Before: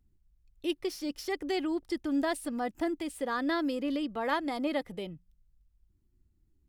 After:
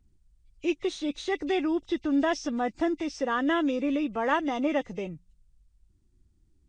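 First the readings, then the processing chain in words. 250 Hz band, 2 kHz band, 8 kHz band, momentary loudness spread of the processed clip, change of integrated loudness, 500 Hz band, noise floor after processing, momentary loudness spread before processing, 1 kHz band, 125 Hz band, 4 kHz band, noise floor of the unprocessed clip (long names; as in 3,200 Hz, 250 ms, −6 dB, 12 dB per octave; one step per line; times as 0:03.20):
+4.5 dB, +4.5 dB, +1.5 dB, 7 LU, +4.5 dB, +4.5 dB, −66 dBFS, 7 LU, +4.5 dB, can't be measured, +1.5 dB, −71 dBFS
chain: hearing-aid frequency compression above 2,000 Hz 1.5 to 1
level +4.5 dB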